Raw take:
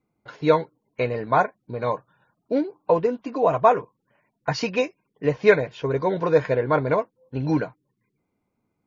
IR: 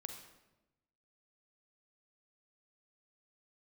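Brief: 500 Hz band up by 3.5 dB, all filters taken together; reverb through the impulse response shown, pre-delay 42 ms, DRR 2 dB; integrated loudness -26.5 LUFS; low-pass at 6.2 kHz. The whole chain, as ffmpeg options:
-filter_complex "[0:a]lowpass=6200,equalizer=f=500:t=o:g=4,asplit=2[s0][s1];[1:a]atrim=start_sample=2205,adelay=42[s2];[s1][s2]afir=irnorm=-1:irlink=0,volume=1.19[s3];[s0][s3]amix=inputs=2:normalize=0,volume=0.398"

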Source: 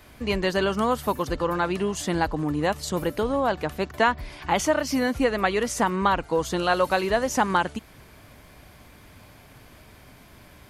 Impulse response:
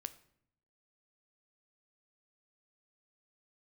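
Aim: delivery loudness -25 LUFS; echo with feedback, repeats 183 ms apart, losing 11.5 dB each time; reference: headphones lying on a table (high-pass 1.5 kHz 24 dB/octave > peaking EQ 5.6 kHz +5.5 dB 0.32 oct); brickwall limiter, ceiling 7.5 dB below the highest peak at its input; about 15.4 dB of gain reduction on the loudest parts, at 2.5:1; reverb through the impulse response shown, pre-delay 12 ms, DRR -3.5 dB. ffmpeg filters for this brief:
-filter_complex "[0:a]acompressor=threshold=0.00891:ratio=2.5,alimiter=level_in=1.78:limit=0.0631:level=0:latency=1,volume=0.562,aecho=1:1:183|366|549:0.266|0.0718|0.0194,asplit=2[s0][s1];[1:a]atrim=start_sample=2205,adelay=12[s2];[s1][s2]afir=irnorm=-1:irlink=0,volume=2.11[s3];[s0][s3]amix=inputs=2:normalize=0,highpass=f=1500:w=0.5412,highpass=f=1500:w=1.3066,equalizer=f=5600:t=o:w=0.32:g=5.5,volume=6.68"

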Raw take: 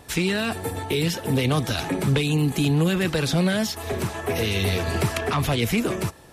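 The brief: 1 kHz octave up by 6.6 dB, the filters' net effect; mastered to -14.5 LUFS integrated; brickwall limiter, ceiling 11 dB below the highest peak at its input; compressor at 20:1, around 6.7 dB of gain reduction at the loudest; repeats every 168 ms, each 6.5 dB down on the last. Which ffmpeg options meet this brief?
-af "equalizer=f=1000:t=o:g=8.5,acompressor=threshold=0.0794:ratio=20,alimiter=limit=0.0668:level=0:latency=1,aecho=1:1:168|336|504|672|840|1008:0.473|0.222|0.105|0.0491|0.0231|0.0109,volume=6.31"

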